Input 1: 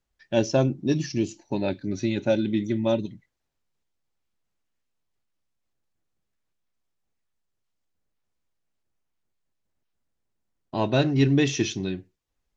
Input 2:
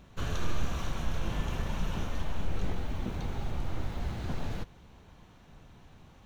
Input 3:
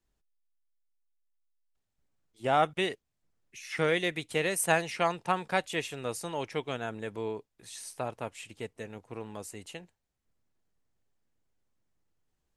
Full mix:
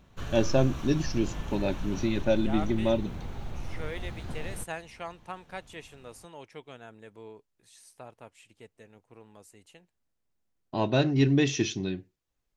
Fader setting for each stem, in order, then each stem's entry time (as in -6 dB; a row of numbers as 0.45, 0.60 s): -2.5, -3.5, -11.5 dB; 0.00, 0.00, 0.00 s